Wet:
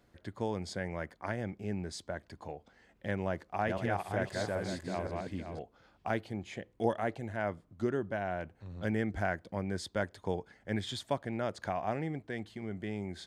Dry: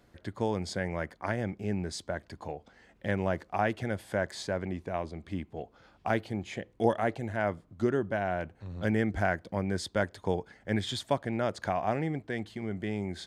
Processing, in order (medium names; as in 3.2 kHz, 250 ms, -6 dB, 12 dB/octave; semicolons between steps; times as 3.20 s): 3.26–5.59 s: backward echo that repeats 259 ms, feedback 45%, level -2 dB; trim -4.5 dB